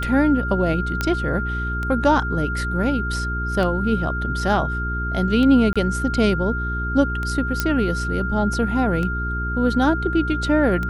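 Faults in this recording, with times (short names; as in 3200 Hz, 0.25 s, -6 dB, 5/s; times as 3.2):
hum 60 Hz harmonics 7 -26 dBFS
tick 33 1/3 rpm
tone 1400 Hz -26 dBFS
1.01 pop -8 dBFS
5.73–5.76 gap 26 ms
7.6 pop -5 dBFS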